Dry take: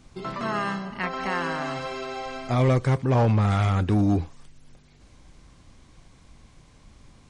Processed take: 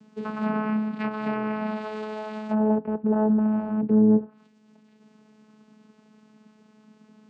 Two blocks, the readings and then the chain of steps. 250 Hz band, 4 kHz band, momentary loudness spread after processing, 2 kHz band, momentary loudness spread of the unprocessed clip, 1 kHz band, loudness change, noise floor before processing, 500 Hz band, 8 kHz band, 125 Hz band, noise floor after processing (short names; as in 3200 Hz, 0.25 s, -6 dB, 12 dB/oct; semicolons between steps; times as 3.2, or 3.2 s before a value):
+5.5 dB, under -10 dB, 13 LU, -6.0 dB, 12 LU, -4.0 dB, 0.0 dB, -55 dBFS, +0.5 dB, n/a, -11.5 dB, -59 dBFS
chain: treble ducked by the level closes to 720 Hz, closed at -20.5 dBFS; vocoder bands 8, saw 215 Hz; gain +1.5 dB